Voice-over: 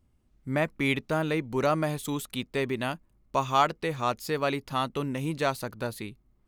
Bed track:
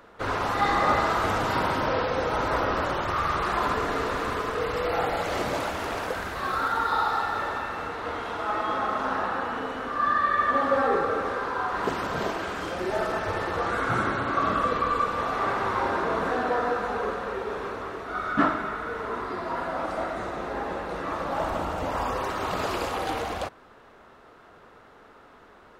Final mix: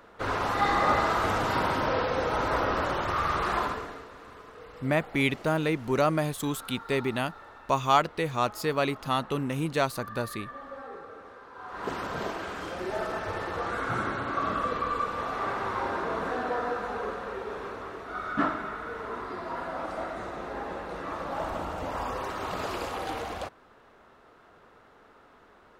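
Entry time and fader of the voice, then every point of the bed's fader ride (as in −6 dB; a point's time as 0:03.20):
4.35 s, +1.0 dB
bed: 0:03.58 −1.5 dB
0:04.08 −19 dB
0:11.50 −19 dB
0:11.92 −4.5 dB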